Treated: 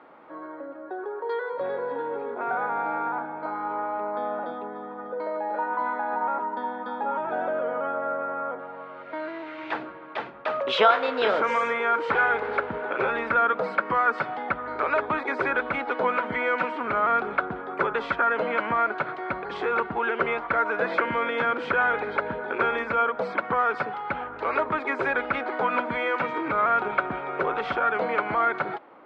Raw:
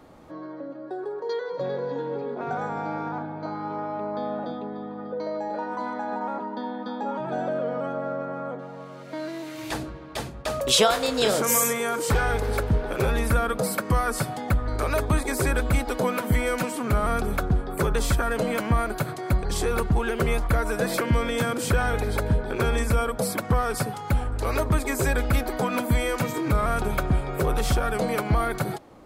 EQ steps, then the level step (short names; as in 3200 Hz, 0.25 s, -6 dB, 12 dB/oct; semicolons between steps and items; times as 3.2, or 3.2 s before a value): speaker cabinet 350–3000 Hz, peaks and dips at 950 Hz +5 dB, 1400 Hz +7 dB, 2100 Hz +3 dB; 0.0 dB